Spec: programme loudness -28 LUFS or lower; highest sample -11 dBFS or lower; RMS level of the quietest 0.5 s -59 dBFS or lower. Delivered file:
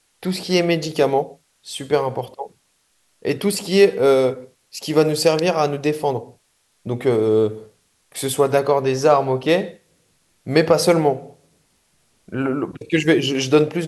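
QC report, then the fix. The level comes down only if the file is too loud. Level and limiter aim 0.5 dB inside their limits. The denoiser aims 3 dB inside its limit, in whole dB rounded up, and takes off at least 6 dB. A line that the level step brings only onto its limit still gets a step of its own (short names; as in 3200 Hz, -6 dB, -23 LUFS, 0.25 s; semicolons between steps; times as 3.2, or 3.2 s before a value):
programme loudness -19.0 LUFS: fail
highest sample -2.0 dBFS: fail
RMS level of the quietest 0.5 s -64 dBFS: OK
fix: gain -9.5 dB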